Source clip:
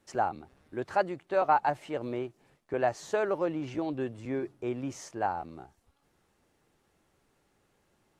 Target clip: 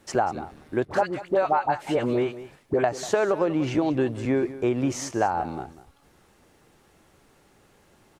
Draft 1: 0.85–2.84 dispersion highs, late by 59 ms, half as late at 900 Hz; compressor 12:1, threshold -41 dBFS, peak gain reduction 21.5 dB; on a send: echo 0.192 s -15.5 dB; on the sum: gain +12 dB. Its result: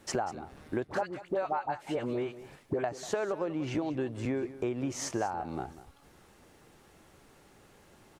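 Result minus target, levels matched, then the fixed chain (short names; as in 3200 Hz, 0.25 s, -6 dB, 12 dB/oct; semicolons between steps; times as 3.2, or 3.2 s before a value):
compressor: peak gain reduction +9.5 dB
0.85–2.84 dispersion highs, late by 59 ms, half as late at 900 Hz; compressor 12:1, threshold -30.5 dBFS, peak gain reduction 12 dB; on a send: echo 0.192 s -15.5 dB; on the sum: gain +12 dB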